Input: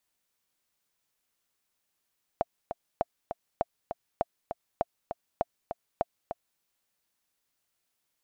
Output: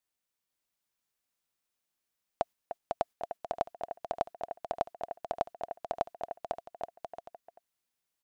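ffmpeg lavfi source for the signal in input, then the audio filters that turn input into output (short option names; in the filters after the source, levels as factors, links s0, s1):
-f lavfi -i "aevalsrc='pow(10,(-12.5-8*gte(mod(t,2*60/200),60/200))/20)*sin(2*PI*686*mod(t,60/200))*exp(-6.91*mod(t,60/200)/0.03)':d=4.2:s=44100"
-filter_complex "[0:a]agate=range=0.398:threshold=0.00708:ratio=16:detection=peak,asplit=2[s0][s1];[s1]aecho=0:1:500|825|1036|1174|1263:0.631|0.398|0.251|0.158|0.1[s2];[s0][s2]amix=inputs=2:normalize=0"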